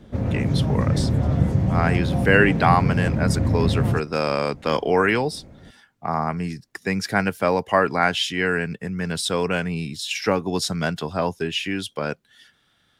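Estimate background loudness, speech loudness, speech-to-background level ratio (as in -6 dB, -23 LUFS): -22.0 LUFS, -23.5 LUFS, -1.5 dB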